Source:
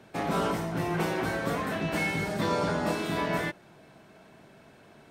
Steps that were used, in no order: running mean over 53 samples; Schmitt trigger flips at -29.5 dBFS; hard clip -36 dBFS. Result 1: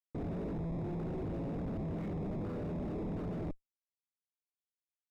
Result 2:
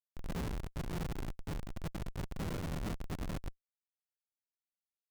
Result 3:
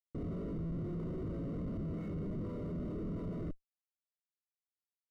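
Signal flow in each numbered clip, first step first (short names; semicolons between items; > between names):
Schmitt trigger > running mean > hard clip; running mean > Schmitt trigger > hard clip; Schmitt trigger > hard clip > running mean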